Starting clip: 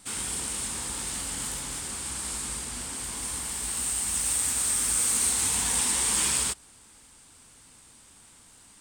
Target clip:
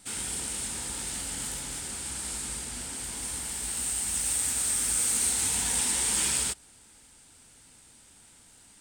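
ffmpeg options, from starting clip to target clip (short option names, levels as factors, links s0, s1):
-af "equalizer=f=1100:w=7.1:g=-9,volume=0.841"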